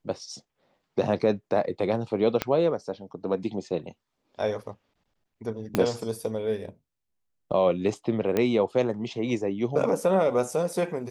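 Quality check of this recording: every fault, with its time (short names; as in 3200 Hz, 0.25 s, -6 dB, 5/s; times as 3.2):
2.42 pop -10 dBFS
5.75 pop -9 dBFS
8.37 pop -12 dBFS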